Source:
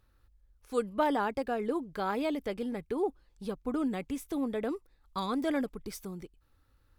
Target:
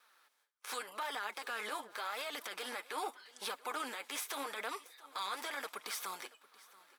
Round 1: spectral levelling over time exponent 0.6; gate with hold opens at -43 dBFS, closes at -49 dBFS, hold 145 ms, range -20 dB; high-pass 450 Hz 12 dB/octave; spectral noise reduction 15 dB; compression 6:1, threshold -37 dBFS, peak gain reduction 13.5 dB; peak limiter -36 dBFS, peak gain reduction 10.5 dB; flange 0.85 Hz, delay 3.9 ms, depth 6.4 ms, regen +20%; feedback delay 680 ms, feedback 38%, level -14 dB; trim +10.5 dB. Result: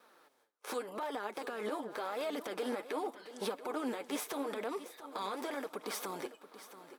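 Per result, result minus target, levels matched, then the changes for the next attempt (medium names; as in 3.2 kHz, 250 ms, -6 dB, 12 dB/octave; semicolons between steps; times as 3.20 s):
500 Hz band +7.0 dB; echo-to-direct +7 dB
change: high-pass 1.4 kHz 12 dB/octave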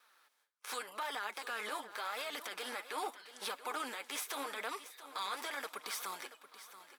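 echo-to-direct +7 dB
change: feedback delay 680 ms, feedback 38%, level -21 dB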